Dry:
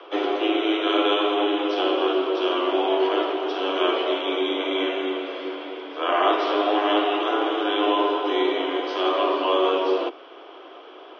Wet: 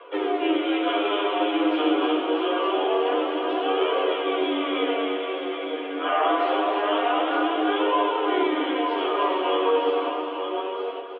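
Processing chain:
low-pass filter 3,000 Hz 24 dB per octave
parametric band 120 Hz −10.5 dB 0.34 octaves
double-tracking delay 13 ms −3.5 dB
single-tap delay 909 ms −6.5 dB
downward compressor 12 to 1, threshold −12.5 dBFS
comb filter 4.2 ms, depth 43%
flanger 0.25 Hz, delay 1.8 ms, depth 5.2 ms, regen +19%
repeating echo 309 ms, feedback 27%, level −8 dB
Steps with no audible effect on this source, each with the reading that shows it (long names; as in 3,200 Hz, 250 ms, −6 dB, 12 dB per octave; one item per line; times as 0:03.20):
parametric band 120 Hz: nothing at its input below 250 Hz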